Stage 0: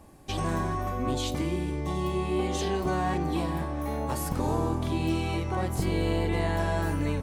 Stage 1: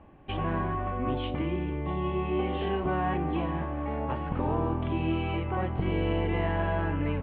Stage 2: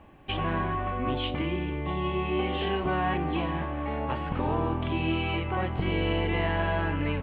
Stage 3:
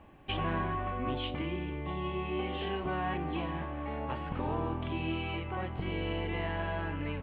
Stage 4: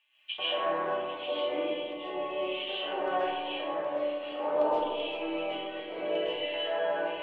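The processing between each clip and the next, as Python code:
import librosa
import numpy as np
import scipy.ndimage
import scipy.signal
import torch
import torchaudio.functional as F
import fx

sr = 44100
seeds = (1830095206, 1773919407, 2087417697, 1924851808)

y1 = scipy.signal.sosfilt(scipy.signal.ellip(4, 1.0, 50, 3000.0, 'lowpass', fs=sr, output='sos'), x)
y2 = fx.high_shelf(y1, sr, hz=2300.0, db=12.0)
y3 = fx.rider(y2, sr, range_db=10, speed_s=2.0)
y3 = F.gain(torch.from_numpy(y3), -6.5).numpy()
y4 = fx.filter_lfo_highpass(y3, sr, shape='square', hz=1.3, low_hz=520.0, high_hz=3000.0, q=3.6)
y4 = fx.comb_fb(y4, sr, f0_hz=300.0, decay_s=0.27, harmonics='all', damping=0.0, mix_pct=80)
y4 = fx.rev_freeverb(y4, sr, rt60_s=1.9, hf_ratio=0.25, predelay_ms=90, drr_db=-10.0)
y4 = F.gain(torch.from_numpy(y4), 2.5).numpy()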